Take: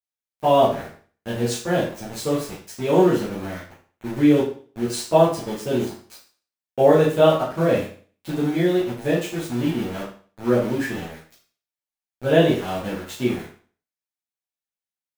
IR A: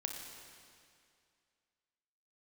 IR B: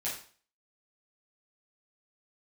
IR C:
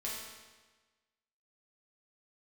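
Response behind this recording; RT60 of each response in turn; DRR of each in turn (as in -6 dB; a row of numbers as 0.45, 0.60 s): B; 2.3, 0.45, 1.3 s; 2.0, -9.0, -6.5 dB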